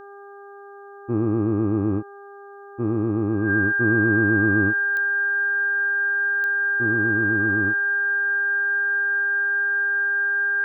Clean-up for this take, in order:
click removal
hum removal 401.2 Hz, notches 4
notch filter 1,600 Hz, Q 30

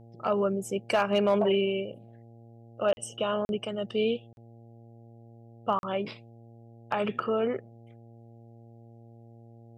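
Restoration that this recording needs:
clipped peaks rebuilt −16 dBFS
hum removal 115.8 Hz, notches 7
repair the gap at 0:02.93/0:03.45/0:04.33/0:05.79, 41 ms

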